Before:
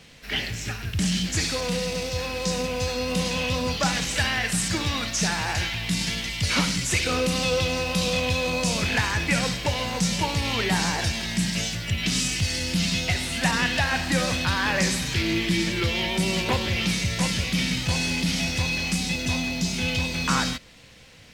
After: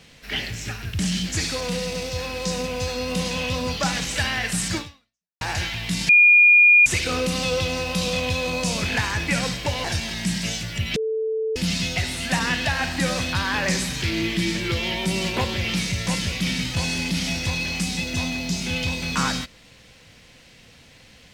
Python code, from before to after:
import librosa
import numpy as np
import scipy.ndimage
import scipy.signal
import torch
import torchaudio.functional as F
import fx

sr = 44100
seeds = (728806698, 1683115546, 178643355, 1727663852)

y = fx.edit(x, sr, fx.fade_out_span(start_s=4.78, length_s=0.63, curve='exp'),
    fx.bleep(start_s=6.09, length_s=0.77, hz=2430.0, db=-9.5),
    fx.cut(start_s=9.84, length_s=1.12),
    fx.bleep(start_s=12.08, length_s=0.6, hz=441.0, db=-21.5), tone=tone)